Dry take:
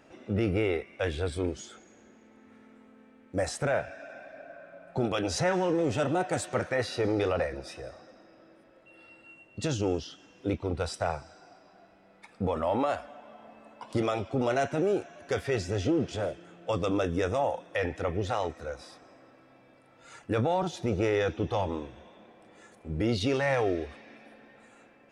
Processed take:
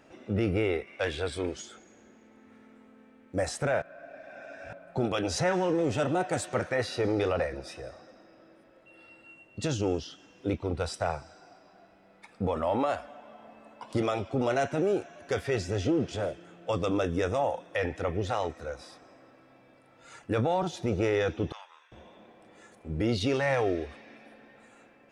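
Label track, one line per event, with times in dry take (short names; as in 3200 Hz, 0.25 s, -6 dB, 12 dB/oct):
0.870000	1.620000	overdrive pedal drive 8 dB, tone 7000 Hz, clips at -18 dBFS
3.820000	4.730000	reverse
21.520000	21.920000	ladder high-pass 1200 Hz, resonance 45%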